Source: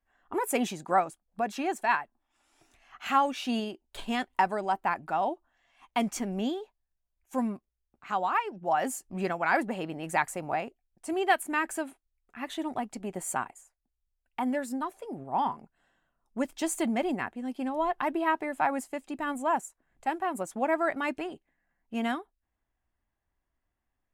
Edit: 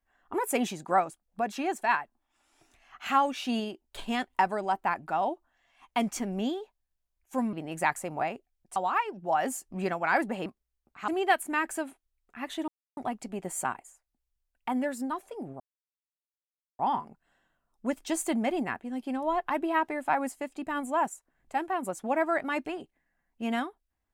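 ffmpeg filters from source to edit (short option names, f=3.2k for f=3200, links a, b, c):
-filter_complex "[0:a]asplit=7[a][b][c][d][e][f][g];[a]atrim=end=7.532[h];[b]atrim=start=9.848:end=11.082[i];[c]atrim=start=8.148:end=9.852[j];[d]atrim=start=7.528:end=8.152[k];[e]atrim=start=11.078:end=12.68,asetpts=PTS-STARTPTS,afade=t=out:st=1.598:d=0.004:c=hsin,apad=pad_dur=0.29[l];[f]atrim=start=12.68:end=15.31,asetpts=PTS-STARTPTS,afade=t=in:d=0.004:c=hsin,afade=t=out:st=2.626:d=0.004:c=hsin,apad=pad_dur=1.19[m];[g]atrim=start=15.31,asetpts=PTS-STARTPTS,afade=t=in:d=0.004:c=hsin[n];[h][i]acrossfade=d=0.004:c1=hsin:c2=hsin[o];[o][j]acrossfade=d=0.004:c1=hsin:c2=hsin[p];[p][k]acrossfade=d=0.004:c1=hsin:c2=hsin[q];[l][m][n]concat=n=3:v=0:a=1[r];[q][r]acrossfade=d=0.004:c1=hsin:c2=hsin"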